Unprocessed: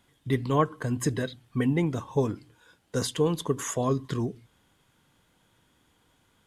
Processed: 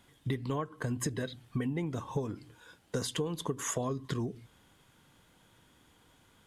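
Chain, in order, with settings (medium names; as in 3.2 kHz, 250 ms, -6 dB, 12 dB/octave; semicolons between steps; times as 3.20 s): compression 16:1, threshold -32 dBFS, peak gain reduction 16 dB; trim +2.5 dB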